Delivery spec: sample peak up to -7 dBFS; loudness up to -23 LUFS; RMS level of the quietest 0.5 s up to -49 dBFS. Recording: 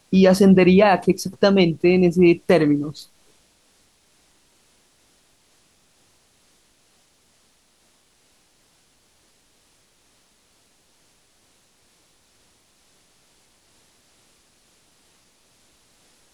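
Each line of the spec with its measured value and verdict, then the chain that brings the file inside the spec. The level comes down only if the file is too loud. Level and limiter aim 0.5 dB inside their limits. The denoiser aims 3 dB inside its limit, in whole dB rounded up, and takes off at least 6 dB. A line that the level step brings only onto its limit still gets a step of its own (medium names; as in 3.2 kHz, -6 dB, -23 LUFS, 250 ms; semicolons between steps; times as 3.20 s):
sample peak -5.0 dBFS: fail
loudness -16.5 LUFS: fail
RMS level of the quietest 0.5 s -61 dBFS: pass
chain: trim -7 dB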